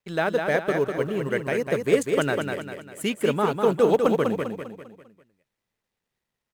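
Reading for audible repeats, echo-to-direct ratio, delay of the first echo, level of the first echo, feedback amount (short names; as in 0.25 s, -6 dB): 5, -4.0 dB, 0.199 s, -5.0 dB, 43%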